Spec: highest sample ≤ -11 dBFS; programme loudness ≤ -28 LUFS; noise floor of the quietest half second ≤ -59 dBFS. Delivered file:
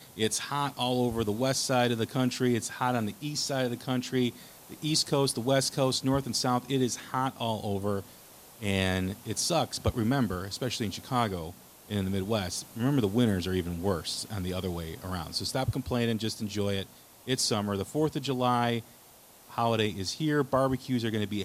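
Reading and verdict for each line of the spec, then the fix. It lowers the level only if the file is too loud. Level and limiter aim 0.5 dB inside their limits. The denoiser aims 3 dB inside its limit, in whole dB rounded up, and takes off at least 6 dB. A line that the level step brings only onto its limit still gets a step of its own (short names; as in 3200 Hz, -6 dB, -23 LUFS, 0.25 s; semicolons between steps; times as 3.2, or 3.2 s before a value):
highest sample -12.0 dBFS: OK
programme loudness -29.5 LUFS: OK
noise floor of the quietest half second -55 dBFS: fail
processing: denoiser 7 dB, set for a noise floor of -55 dBFS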